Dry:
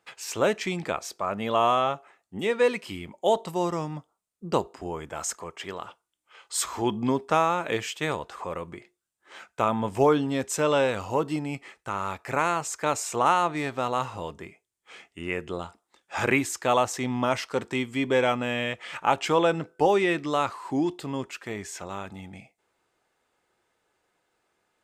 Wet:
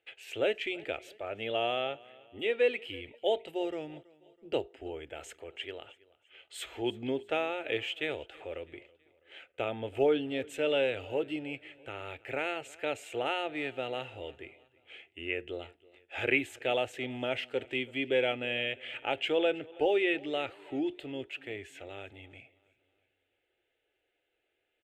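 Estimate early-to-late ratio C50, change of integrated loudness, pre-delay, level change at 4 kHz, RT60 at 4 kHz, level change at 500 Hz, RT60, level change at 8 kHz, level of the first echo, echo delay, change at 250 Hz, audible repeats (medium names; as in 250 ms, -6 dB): no reverb, -6.5 dB, no reverb, -2.0 dB, no reverb, -5.0 dB, no reverb, -19.5 dB, -23.0 dB, 327 ms, -8.0 dB, 2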